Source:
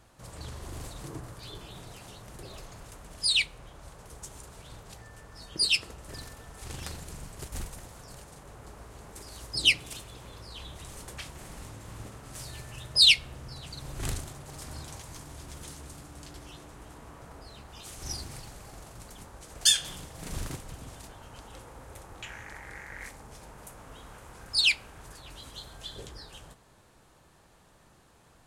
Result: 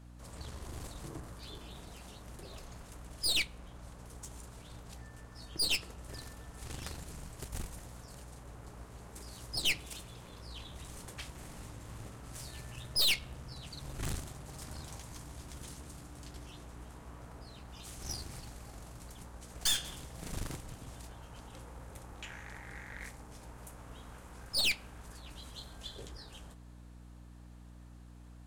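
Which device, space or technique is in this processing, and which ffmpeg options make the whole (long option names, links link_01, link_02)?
valve amplifier with mains hum: -af "aeval=exprs='(tanh(20*val(0)+0.75)-tanh(0.75))/20':channel_layout=same,aeval=exprs='val(0)+0.00282*(sin(2*PI*60*n/s)+sin(2*PI*2*60*n/s)/2+sin(2*PI*3*60*n/s)/3+sin(2*PI*4*60*n/s)/4+sin(2*PI*5*60*n/s)/5)':channel_layout=same"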